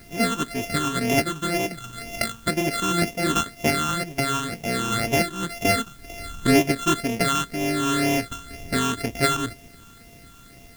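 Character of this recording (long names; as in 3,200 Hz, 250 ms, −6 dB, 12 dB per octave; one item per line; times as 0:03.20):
a buzz of ramps at a fixed pitch in blocks of 64 samples
phaser sweep stages 8, 2 Hz, lowest notch 620–1,300 Hz
a quantiser's noise floor 10 bits, dither triangular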